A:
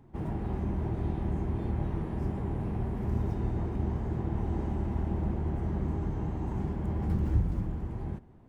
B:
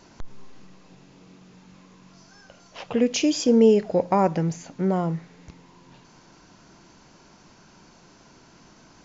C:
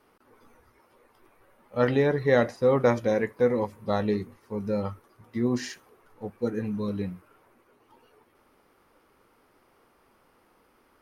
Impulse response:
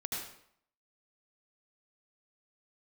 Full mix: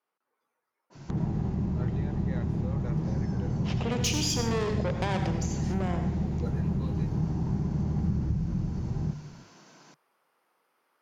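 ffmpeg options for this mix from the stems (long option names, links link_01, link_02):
-filter_complex "[0:a]lowpass=frequency=2400:poles=1,adelay=950,volume=1.5dB[link_01];[1:a]aeval=exprs='(tanh(12.6*val(0)+0.35)-tanh(0.35))/12.6':channel_layout=same,highpass=370,adynamicequalizer=threshold=0.00398:dfrequency=1900:dqfactor=0.7:tfrequency=1900:tqfactor=0.7:attack=5:release=100:ratio=0.375:range=3.5:mode=boostabove:tftype=highshelf,adelay=900,volume=-2dB,asplit=2[link_02][link_03];[link_03]volume=-9.5dB[link_04];[2:a]highpass=590,volume=-7.5dB,afade=type=in:start_time=5.59:duration=0.22:silence=0.237137[link_05];[link_01][link_02]amix=inputs=2:normalize=0,bandreject=frequency=50:width_type=h:width=6,bandreject=frequency=100:width_type=h:width=6,bandreject=frequency=150:width_type=h:width=6,acompressor=threshold=-33dB:ratio=2.5,volume=0dB[link_06];[3:a]atrim=start_sample=2205[link_07];[link_04][link_07]afir=irnorm=-1:irlink=0[link_08];[link_05][link_06][link_08]amix=inputs=3:normalize=0,equalizer=frequency=150:width_type=o:width=0.8:gain=14.5"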